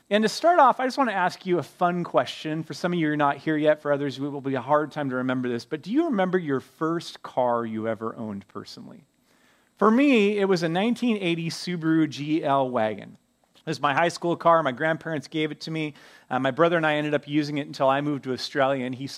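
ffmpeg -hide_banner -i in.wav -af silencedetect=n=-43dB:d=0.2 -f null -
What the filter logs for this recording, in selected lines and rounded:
silence_start: 8.99
silence_end: 9.77 | silence_duration: 0.78
silence_start: 13.14
silence_end: 13.57 | silence_duration: 0.43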